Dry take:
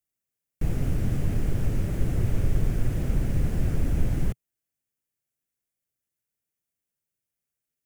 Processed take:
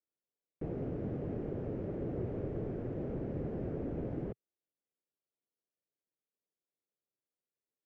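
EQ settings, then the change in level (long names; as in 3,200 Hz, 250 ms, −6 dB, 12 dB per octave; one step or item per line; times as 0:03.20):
resonant band-pass 440 Hz, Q 1.5
high-frequency loss of the air 110 metres
+1.0 dB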